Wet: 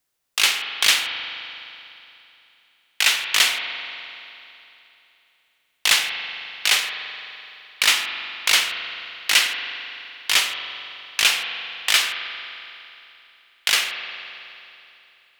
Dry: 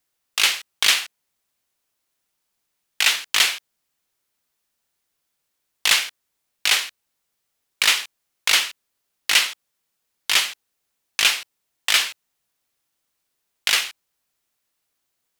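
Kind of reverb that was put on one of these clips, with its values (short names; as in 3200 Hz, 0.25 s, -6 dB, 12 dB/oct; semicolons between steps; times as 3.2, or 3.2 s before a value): spring tank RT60 3 s, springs 42 ms, chirp 35 ms, DRR 5 dB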